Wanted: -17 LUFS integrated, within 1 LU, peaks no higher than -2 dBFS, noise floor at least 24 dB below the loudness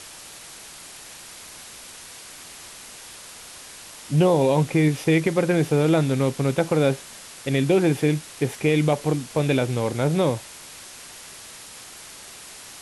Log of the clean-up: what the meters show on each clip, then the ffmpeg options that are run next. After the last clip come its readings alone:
noise floor -42 dBFS; noise floor target -46 dBFS; loudness -22.0 LUFS; peak -7.5 dBFS; loudness target -17.0 LUFS
-> -af "afftdn=nr=6:nf=-42"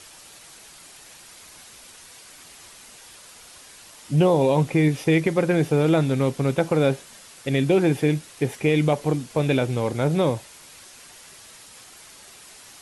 noise floor -47 dBFS; loudness -22.0 LUFS; peak -7.5 dBFS; loudness target -17.0 LUFS
-> -af "volume=5dB"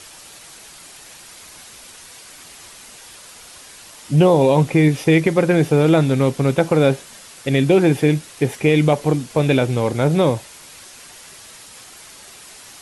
loudness -17.0 LUFS; peak -2.5 dBFS; noise floor -42 dBFS

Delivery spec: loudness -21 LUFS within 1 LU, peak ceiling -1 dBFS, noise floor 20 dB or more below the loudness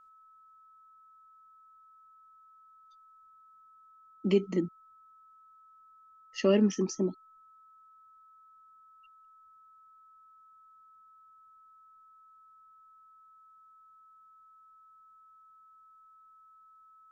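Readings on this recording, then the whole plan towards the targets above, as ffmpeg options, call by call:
steady tone 1300 Hz; tone level -56 dBFS; loudness -29.5 LUFS; peak -14.0 dBFS; loudness target -21.0 LUFS
-> -af "bandreject=f=1.3k:w=30"
-af "volume=8.5dB"

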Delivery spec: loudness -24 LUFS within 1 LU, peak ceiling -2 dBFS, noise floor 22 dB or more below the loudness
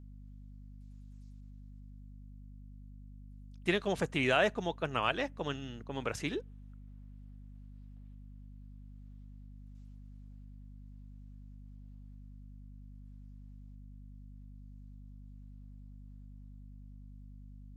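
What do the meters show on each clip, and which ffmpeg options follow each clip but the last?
hum 50 Hz; harmonics up to 250 Hz; hum level -48 dBFS; loudness -33.5 LUFS; peak -14.0 dBFS; loudness target -24.0 LUFS
-> -af "bandreject=f=50:t=h:w=4,bandreject=f=100:t=h:w=4,bandreject=f=150:t=h:w=4,bandreject=f=200:t=h:w=4,bandreject=f=250:t=h:w=4"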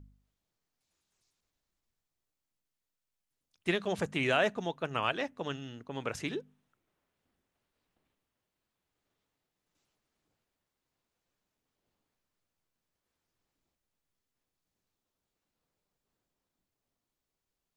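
hum none; loudness -33.5 LUFS; peak -14.0 dBFS; loudness target -24.0 LUFS
-> -af "volume=9.5dB"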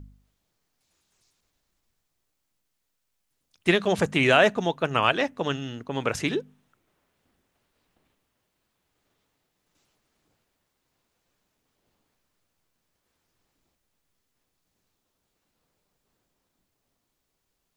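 loudness -24.0 LUFS; peak -4.5 dBFS; noise floor -78 dBFS

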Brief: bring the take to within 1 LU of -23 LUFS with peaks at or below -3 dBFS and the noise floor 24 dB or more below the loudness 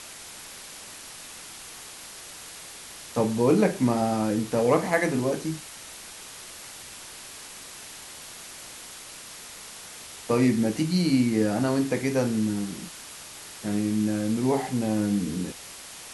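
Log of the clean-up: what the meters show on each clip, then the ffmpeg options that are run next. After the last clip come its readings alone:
noise floor -43 dBFS; noise floor target -49 dBFS; loudness -25.0 LUFS; peak -6.5 dBFS; loudness target -23.0 LUFS
-> -af "afftdn=nr=6:nf=-43"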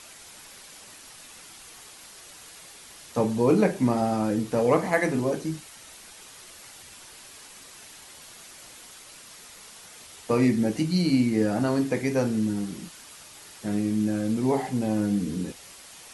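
noise floor -47 dBFS; noise floor target -49 dBFS
-> -af "afftdn=nr=6:nf=-47"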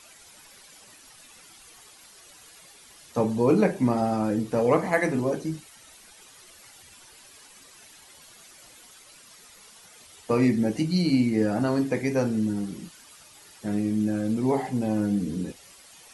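noise floor -52 dBFS; loudness -25.5 LUFS; peak -7.0 dBFS; loudness target -23.0 LUFS
-> -af "volume=2.5dB"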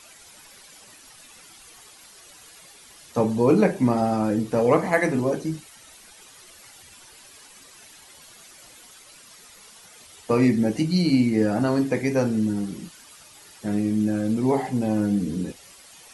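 loudness -23.0 LUFS; peak -4.5 dBFS; noise floor -49 dBFS

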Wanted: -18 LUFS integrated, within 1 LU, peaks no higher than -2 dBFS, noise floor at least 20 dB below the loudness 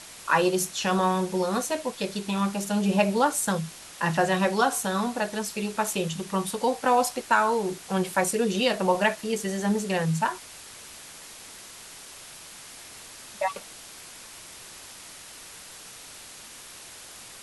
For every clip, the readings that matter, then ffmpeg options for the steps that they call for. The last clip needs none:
noise floor -45 dBFS; noise floor target -46 dBFS; loudness -26.0 LUFS; peak -9.0 dBFS; loudness target -18.0 LUFS
-> -af "afftdn=nr=6:nf=-45"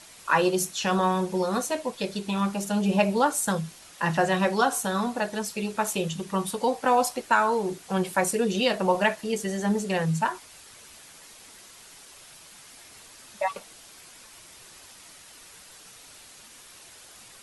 noise floor -50 dBFS; loudness -26.0 LUFS; peak -9.0 dBFS; loudness target -18.0 LUFS
-> -af "volume=8dB,alimiter=limit=-2dB:level=0:latency=1"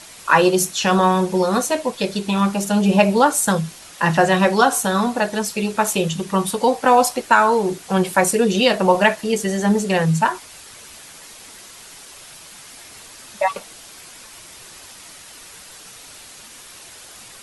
loudness -18.0 LUFS; peak -2.0 dBFS; noise floor -42 dBFS

